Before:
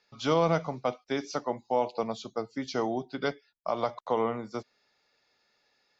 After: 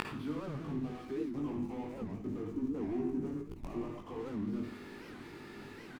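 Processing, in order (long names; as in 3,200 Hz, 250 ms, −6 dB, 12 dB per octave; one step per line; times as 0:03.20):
converter with a step at zero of −32 dBFS
mid-hump overdrive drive 32 dB, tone 1,800 Hz, clips at −13.5 dBFS
time-frequency box erased 0:01.31–0:04.19, 1,300–5,700 Hz
slack as between gear wheels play −19.5 dBFS
gate with flip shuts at −36 dBFS, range −34 dB
low shelf with overshoot 430 Hz +9.5 dB, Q 3
double-tracking delay 20 ms −4 dB
convolution reverb RT60 0.45 s, pre-delay 48 ms, DRR 4 dB
wow of a warped record 78 rpm, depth 250 cents
level +10.5 dB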